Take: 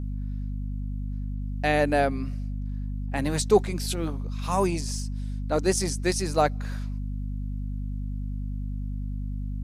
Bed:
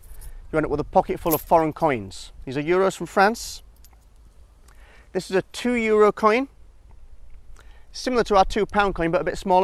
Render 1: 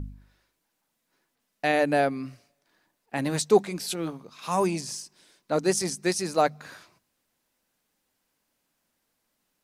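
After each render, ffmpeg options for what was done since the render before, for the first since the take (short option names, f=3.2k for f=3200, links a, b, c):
-af "bandreject=f=50:t=h:w=4,bandreject=f=100:t=h:w=4,bandreject=f=150:t=h:w=4,bandreject=f=200:t=h:w=4,bandreject=f=250:t=h:w=4"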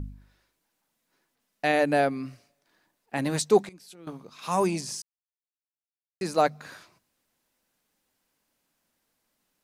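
-filter_complex "[0:a]asplit=5[a][b][c][d][e];[a]atrim=end=3.69,asetpts=PTS-STARTPTS,afade=t=out:st=3.26:d=0.43:c=log:silence=0.133352[f];[b]atrim=start=3.69:end=4.07,asetpts=PTS-STARTPTS,volume=-17.5dB[g];[c]atrim=start=4.07:end=5.02,asetpts=PTS-STARTPTS,afade=t=in:d=0.43:c=log:silence=0.133352,afade=t=out:st=0.946:d=0.004:c=hsin[h];[d]atrim=start=5.02:end=6.21,asetpts=PTS-STARTPTS,volume=0[i];[e]atrim=start=6.21,asetpts=PTS-STARTPTS,afade=t=in:d=0.004:c=hsin[j];[f][g][h][i][j]concat=n=5:v=0:a=1"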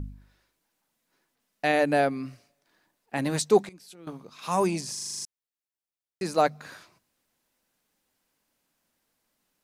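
-filter_complex "[0:a]asplit=9[a][b][c][d][e][f][g][h][i];[a]atrim=end=4.972[j];[b]atrim=start=4.928:end=4.972[k];[c]atrim=start=4.928:end=4.972[l];[d]atrim=start=4.928:end=4.972[m];[e]atrim=start=4.928:end=4.972[n];[f]atrim=start=4.928:end=4.972[o];[g]atrim=start=4.928:end=4.972[p];[h]atrim=start=4.928:end=4.972[q];[i]atrim=start=5.248[r];[j][k]acrossfade=d=0.004:c1=hsin:c2=hsin[s];[s][l]acrossfade=d=0.004:c1=hsin:c2=hsin[t];[t][m]acrossfade=d=0.004:c1=hsin:c2=hsin[u];[u][n]acrossfade=d=0.004:c1=hsin:c2=hsin[v];[v][o]acrossfade=d=0.004:c1=hsin:c2=hsin[w];[w][p]acrossfade=d=0.004:c1=hsin:c2=hsin[x];[x][q]acrossfade=d=0.004:c1=hsin:c2=hsin[y];[y][r]acrossfade=d=0.004:c1=hsin:c2=hsin"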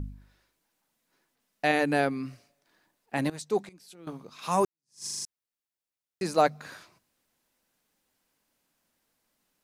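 -filter_complex "[0:a]asettb=1/sr,asplit=3[a][b][c];[a]atrim=end=1.714[d];[b]atrim=start=1.71:end=2.3,asetpts=PTS-STARTPTS,afade=t=in:d=0.004:c=qsin,afade=t=out:st=0.586:d=0.004:c=qsin,equalizer=f=630:t=o:w=0.21:g=-13[e];[c]atrim=start=2.296[f];[d][e]acrossfade=d=0.004:c1=hsin:c2=qsin[g];[g][f]acrossfade=d=0.004:c1=qsin:c2=hsin,asplit=3[h][i][j];[h]atrim=end=3.3,asetpts=PTS-STARTPTS,afade=t=out:st=3.296:d=0.004:c=hsin:silence=0.149624[k];[i]atrim=start=3.3:end=4.65,asetpts=PTS-STARTPTS,afade=t=in:d=0.82:silence=0.149624,afade=t=out:st=1.346:d=0.004:c=hsin[l];[j]atrim=start=4.65,asetpts=PTS-STARTPTS,afade=t=in:d=0.4:c=exp[m];[k][l][m]concat=n=3:v=0:a=1"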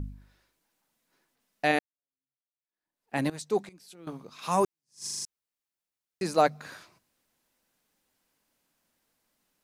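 -filter_complex "[0:a]asplit=2[a][b];[a]atrim=end=1.79,asetpts=PTS-STARTPTS,afade=t=out:st=1.786:d=0.004:c=hsin[c];[b]atrim=start=1.79,asetpts=PTS-STARTPTS,afade=t=in:d=1.37:c=exp[d];[c][d]concat=n=2:v=0:a=1"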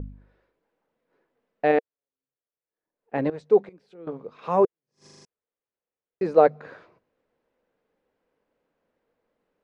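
-af "lowpass=2k,equalizer=f=470:t=o:w=0.68:g=13"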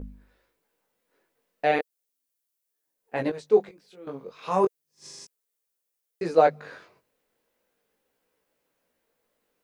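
-af "flanger=delay=15.5:depth=6.4:speed=0.35,crystalizer=i=5.5:c=0"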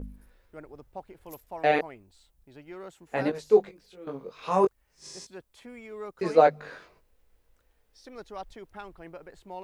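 -filter_complex "[1:a]volume=-23dB[a];[0:a][a]amix=inputs=2:normalize=0"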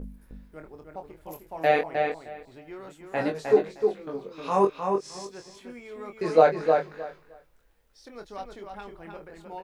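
-filter_complex "[0:a]asplit=2[a][b];[b]adelay=25,volume=-7dB[c];[a][c]amix=inputs=2:normalize=0,asplit=2[d][e];[e]adelay=309,lowpass=f=4.4k:p=1,volume=-4.5dB,asplit=2[f][g];[g]adelay=309,lowpass=f=4.4k:p=1,volume=0.18,asplit=2[h][i];[i]adelay=309,lowpass=f=4.4k:p=1,volume=0.18[j];[d][f][h][j]amix=inputs=4:normalize=0"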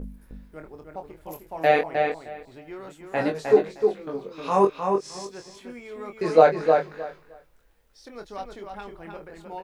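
-af "volume=2.5dB"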